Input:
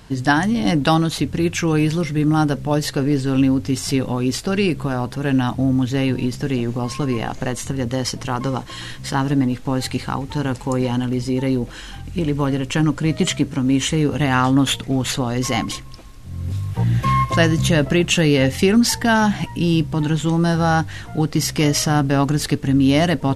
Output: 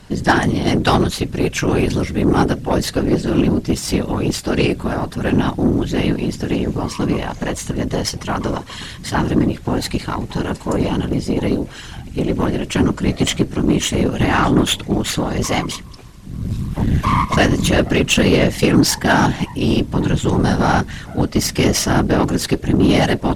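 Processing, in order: whisper effect; Chebyshev shaper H 8 -25 dB, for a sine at -2 dBFS; trim +1.5 dB

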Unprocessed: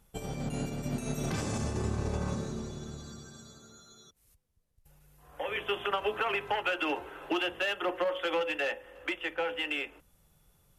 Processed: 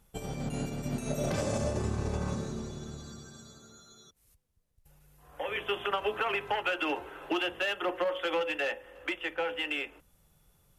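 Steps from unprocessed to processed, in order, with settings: 1.10–1.79 s: peaking EQ 580 Hz +14 dB 0.3 oct

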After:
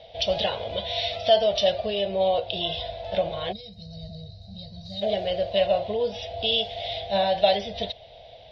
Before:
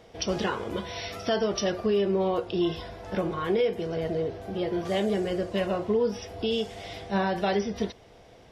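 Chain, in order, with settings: peaking EQ 62 Hz +2.5 dB 2.1 oct; time-frequency box 3.52–5.02 s, 220–3700 Hz -25 dB; FFT filter 110 Hz 0 dB, 350 Hz -15 dB, 630 Hz +13 dB, 1.2 kHz -12 dB, 3.8 kHz +15 dB, 8.6 kHz -28 dB

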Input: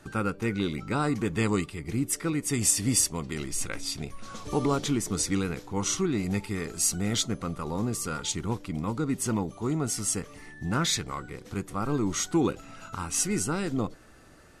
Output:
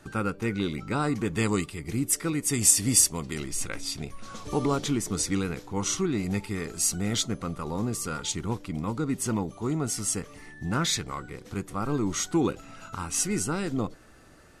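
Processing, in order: 1.35–3.40 s: treble shelf 5.4 kHz +6 dB

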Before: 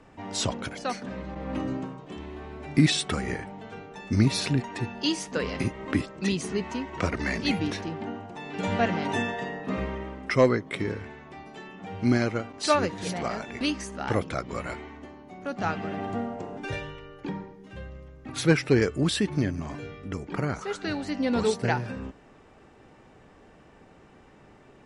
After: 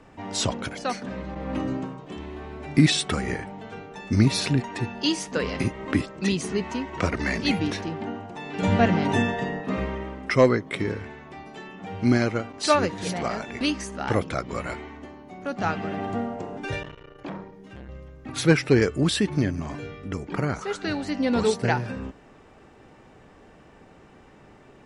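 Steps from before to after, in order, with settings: 8.62–9.61 s: bass shelf 260 Hz +8 dB; 16.83–17.89 s: transformer saturation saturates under 1.1 kHz; trim +2.5 dB

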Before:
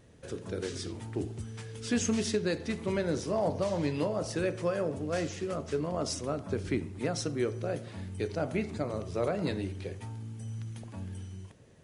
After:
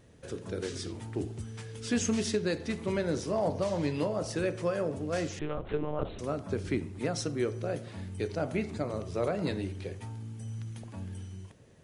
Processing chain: 5.39–6.19 s: monotone LPC vocoder at 8 kHz 150 Hz

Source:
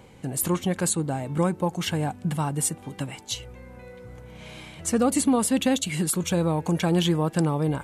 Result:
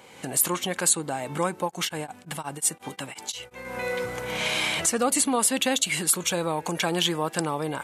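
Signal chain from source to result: recorder AGC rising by 34 dB/s; high-pass 930 Hz 6 dB/octave; 1.63–3.65 s: tremolo of two beating tones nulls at 5.6 Hz; trim +5 dB

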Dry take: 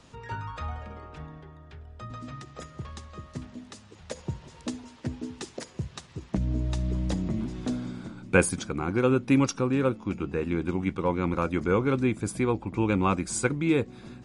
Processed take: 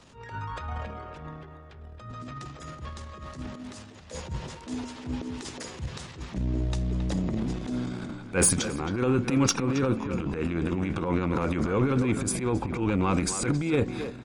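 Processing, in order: transient shaper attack -11 dB, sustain +11 dB; saturation -11.5 dBFS, distortion -24 dB; speakerphone echo 270 ms, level -8 dB

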